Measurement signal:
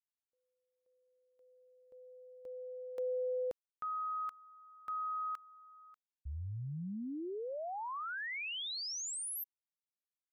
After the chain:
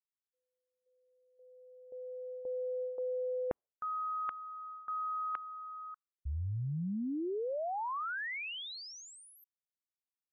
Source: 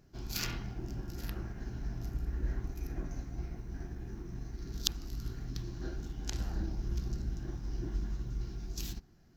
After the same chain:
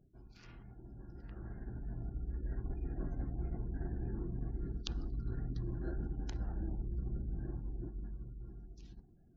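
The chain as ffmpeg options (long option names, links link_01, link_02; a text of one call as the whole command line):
ffmpeg -i in.wav -af "areverse,acompressor=threshold=-48dB:ratio=16:attack=9.3:release=305:knee=6:detection=peak,areverse,aemphasis=mode=reproduction:type=75fm,afftdn=noise_reduction=33:noise_floor=-69,dynaudnorm=framelen=270:gausssize=13:maxgain=16dB,volume=-2.5dB" out.wav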